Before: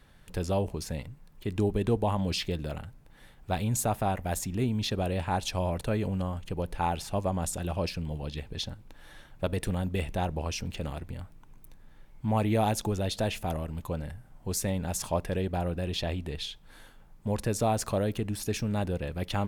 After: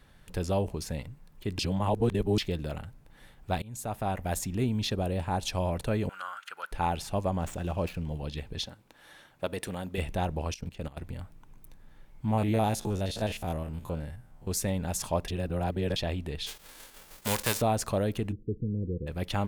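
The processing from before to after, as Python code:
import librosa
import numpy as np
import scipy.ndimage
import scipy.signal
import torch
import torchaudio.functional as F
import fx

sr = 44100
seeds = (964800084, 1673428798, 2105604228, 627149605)

y = fx.peak_eq(x, sr, hz=2400.0, db=-5.0, octaves=2.3, at=(4.94, 5.43))
y = fx.highpass_res(y, sr, hz=1400.0, q=14.0, at=(6.09, 6.72))
y = fx.median_filter(y, sr, points=9, at=(7.39, 8.14))
y = fx.highpass(y, sr, hz=320.0, slope=6, at=(8.65, 9.98))
y = fx.level_steps(y, sr, step_db=17, at=(10.54, 10.97))
y = fx.spec_steps(y, sr, hold_ms=50, at=(12.3, 14.48), fade=0.02)
y = fx.envelope_flatten(y, sr, power=0.3, at=(16.46, 17.6), fade=0.02)
y = fx.cheby_ripple(y, sr, hz=500.0, ripple_db=3, at=(18.31, 19.06), fade=0.02)
y = fx.edit(y, sr, fx.reverse_span(start_s=1.59, length_s=0.79),
    fx.fade_in_from(start_s=3.62, length_s=0.62, floor_db=-23.5),
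    fx.reverse_span(start_s=15.28, length_s=0.68), tone=tone)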